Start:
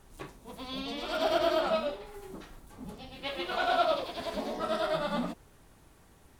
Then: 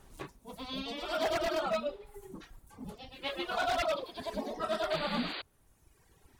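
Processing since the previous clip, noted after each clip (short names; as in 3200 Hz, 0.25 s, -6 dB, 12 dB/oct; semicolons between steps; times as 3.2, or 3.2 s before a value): wavefolder -23 dBFS; reverb removal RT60 1.6 s; painted sound noise, 4.9–5.42, 270–4800 Hz -40 dBFS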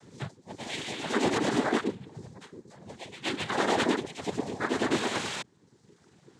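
frequency shift -260 Hz; noise vocoder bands 6; gain +5.5 dB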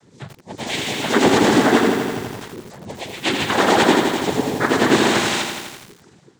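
AGC gain up to 12 dB; lo-fi delay 83 ms, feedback 80%, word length 6-bit, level -5.5 dB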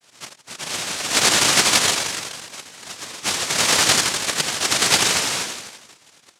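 noise vocoder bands 1; gain -2.5 dB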